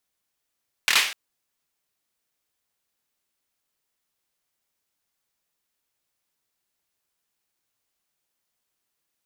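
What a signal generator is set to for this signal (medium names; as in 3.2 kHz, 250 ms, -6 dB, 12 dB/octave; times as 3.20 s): hand clap length 0.25 s, bursts 4, apart 25 ms, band 2.4 kHz, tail 0.48 s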